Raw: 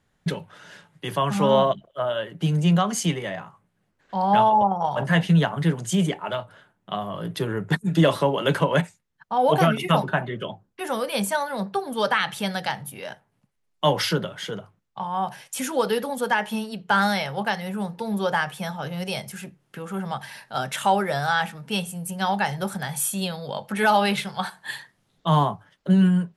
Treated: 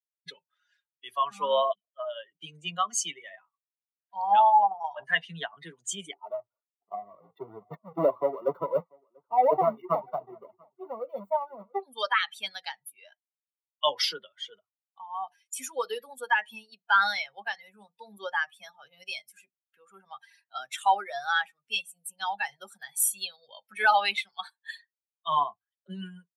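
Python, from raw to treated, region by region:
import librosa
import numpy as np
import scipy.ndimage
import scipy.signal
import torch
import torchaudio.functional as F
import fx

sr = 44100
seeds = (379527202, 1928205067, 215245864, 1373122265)

y = fx.chain(x, sr, fx.halfwave_hold(),
    fx.savgol(points=65),
    fx.echo_single(ms=689, db=-15.5), at=(6.13, 11.83))
y = fx.bin_expand(y, sr, power=2.0)
y = scipy.signal.sosfilt(scipy.signal.butter(2, 700.0, 'highpass', fs=sr, output='sos'), y)
y = y * librosa.db_to_amplitude(3.0)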